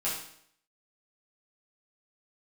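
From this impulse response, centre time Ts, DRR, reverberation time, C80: 44 ms, -8.5 dB, 0.65 s, 7.0 dB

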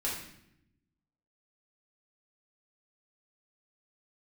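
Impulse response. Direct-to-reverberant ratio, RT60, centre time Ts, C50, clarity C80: -6.0 dB, 0.80 s, 45 ms, 3.0 dB, 6.5 dB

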